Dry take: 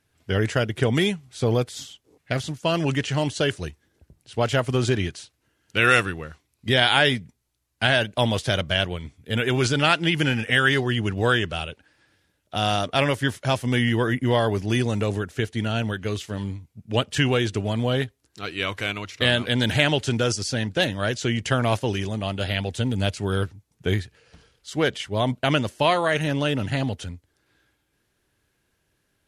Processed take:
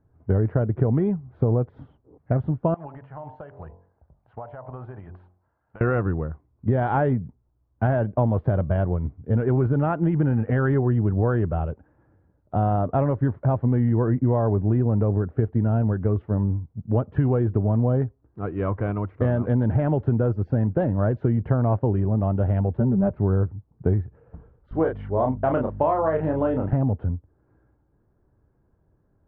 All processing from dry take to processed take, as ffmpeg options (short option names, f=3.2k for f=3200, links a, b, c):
-filter_complex "[0:a]asettb=1/sr,asplit=3[a][b][c];[a]atrim=end=2.744[d];[b]atrim=start=2.74:end=5.81,asetpts=PTS-STARTPTS,afade=t=in:d=0.004:c=qsin,afade=t=out:st=3.066:d=0.004:c=qsin,lowshelf=f=520:t=q:w=1.5:g=-12.5,bandreject=f=45.3:t=h:w=4,bandreject=f=90.6:t=h:w=4,bandreject=f=135.9:t=h:w=4,bandreject=f=181.2:t=h:w=4,bandreject=f=226.5:t=h:w=4,bandreject=f=271.8:t=h:w=4,bandreject=f=317.1:t=h:w=4,bandreject=f=362.4:t=h:w=4,bandreject=f=407.7:t=h:w=4,bandreject=f=453:t=h:w=4,bandreject=f=498.3:t=h:w=4,bandreject=f=543.6:t=h:w=4,bandreject=f=588.9:t=h:w=4,bandreject=f=634.2:t=h:w=4,bandreject=f=679.5:t=h:w=4,bandreject=f=724.8:t=h:w=4,bandreject=f=770.1:t=h:w=4,bandreject=f=815.4:t=h:w=4,bandreject=f=860.7:t=h:w=4,bandreject=f=906:t=h:w=4,bandreject=f=951.3:t=h:w=4,bandreject=f=996.6:t=h:w=4,bandreject=f=1.0419k:t=h:w=4,acompressor=threshold=-38dB:ratio=5:attack=3.2:release=140:knee=1:detection=peak[e];[c]atrim=start=5.806[f];[d][e]acrossfade=d=0.004:c1=hsin:c2=qsin[g];[g][f]acrossfade=d=0.004:c1=qsin:c2=hsin,asettb=1/sr,asplit=3[h][i][j];[h]atrim=end=22.774[k];[i]atrim=start=22.77:end=23.17,asetpts=PTS-STARTPTS,afade=t=in:d=0.004:c=qsin,afade=t=out:st=0.396:d=0.004:c=qsin,lowpass=1.9k,aecho=1:1:5.2:0.93,atrim=end_sample=17640[l];[j]atrim=start=23.166[m];[k][l]acrossfade=d=0.004:c1=hsin:c2=qsin[n];[n][m]acrossfade=d=0.004:c1=qsin:c2=hsin,asettb=1/sr,asplit=3[o][p][q];[o]atrim=end=24.714[r];[p]atrim=start=24.71:end=26.73,asetpts=PTS-STARTPTS,afade=t=in:d=0.004:c=qsin,afade=t=out:st=2.016:d=0.004:c=qsin,bass=f=250:g=-14,treble=f=4k:g=9,aeval=exprs='val(0)+0.00794*(sin(2*PI*50*n/s)+sin(2*PI*2*50*n/s)/2+sin(2*PI*3*50*n/s)/3+sin(2*PI*4*50*n/s)/4+sin(2*PI*5*50*n/s)/5)':c=same,asplit=2[s][t];[t]adelay=31,volume=-4dB[u];[s][u]amix=inputs=2:normalize=0,atrim=end_sample=89082[v];[q]atrim=start=26.726[w];[r][v]acrossfade=d=0.004:c1=hsin:c2=qsin[x];[x][w]acrossfade=d=0.004:c1=qsin:c2=hsin,lowpass=f=1.1k:w=0.5412,lowpass=f=1.1k:w=1.3066,lowshelf=f=200:g=8.5,acompressor=threshold=-21dB:ratio=6,volume=3.5dB"